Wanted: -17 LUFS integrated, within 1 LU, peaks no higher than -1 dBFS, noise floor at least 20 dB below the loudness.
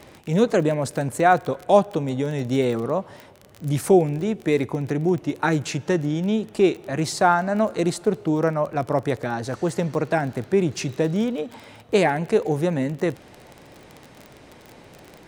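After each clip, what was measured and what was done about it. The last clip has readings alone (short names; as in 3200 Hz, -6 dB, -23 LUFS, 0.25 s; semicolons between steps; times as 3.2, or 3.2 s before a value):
ticks 23/s; loudness -22.5 LUFS; peak -4.0 dBFS; loudness target -17.0 LUFS
-> de-click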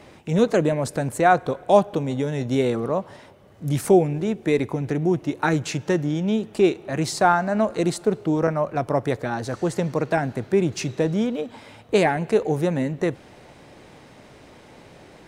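ticks 0.065/s; loudness -22.5 LUFS; peak -4.0 dBFS; loudness target -17.0 LUFS
-> gain +5.5 dB; limiter -1 dBFS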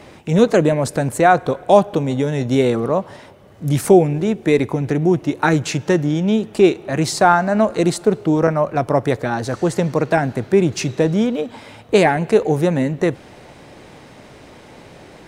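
loudness -17.5 LUFS; peak -1.0 dBFS; noise floor -43 dBFS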